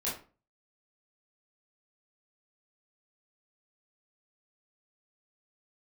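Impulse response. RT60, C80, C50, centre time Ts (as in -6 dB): 0.35 s, 12.0 dB, 5.5 dB, 36 ms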